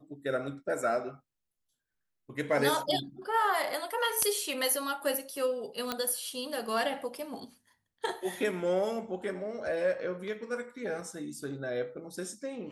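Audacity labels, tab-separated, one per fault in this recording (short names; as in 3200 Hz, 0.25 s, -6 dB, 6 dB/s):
5.920000	5.920000	pop -15 dBFS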